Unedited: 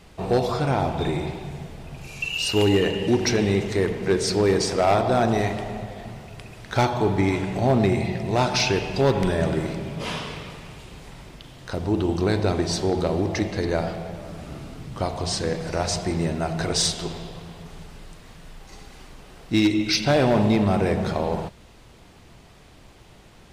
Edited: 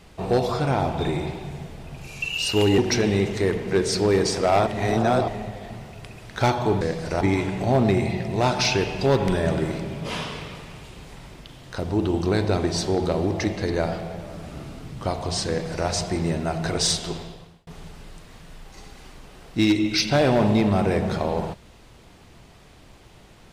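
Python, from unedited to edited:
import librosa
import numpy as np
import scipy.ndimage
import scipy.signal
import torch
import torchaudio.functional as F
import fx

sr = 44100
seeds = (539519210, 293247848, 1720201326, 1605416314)

y = fx.edit(x, sr, fx.cut(start_s=2.78, length_s=0.35),
    fx.reverse_span(start_s=5.02, length_s=0.61),
    fx.duplicate(start_s=15.43, length_s=0.4, to_s=7.16),
    fx.fade_out_span(start_s=17.09, length_s=0.53), tone=tone)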